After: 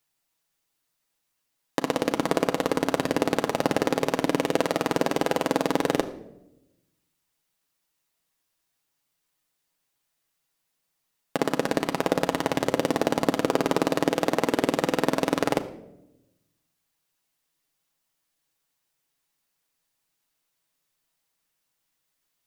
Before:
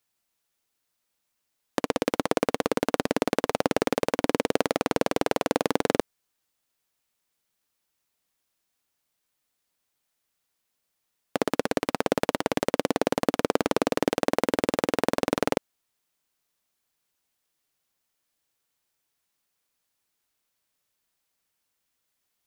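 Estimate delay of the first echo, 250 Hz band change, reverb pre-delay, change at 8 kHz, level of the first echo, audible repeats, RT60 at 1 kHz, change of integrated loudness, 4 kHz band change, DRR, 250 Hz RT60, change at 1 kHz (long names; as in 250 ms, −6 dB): no echo audible, +1.5 dB, 6 ms, +1.0 dB, no echo audible, no echo audible, 0.70 s, +1.0 dB, +1.0 dB, 5.0 dB, 1.2 s, +1.5 dB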